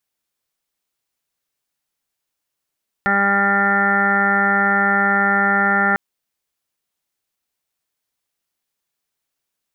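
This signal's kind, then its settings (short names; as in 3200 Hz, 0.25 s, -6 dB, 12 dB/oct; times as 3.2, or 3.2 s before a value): steady additive tone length 2.90 s, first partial 199 Hz, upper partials -5.5/-6.5/1.5/-12.5/-11.5/5/-11/3/-7/-18.5 dB, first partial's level -22.5 dB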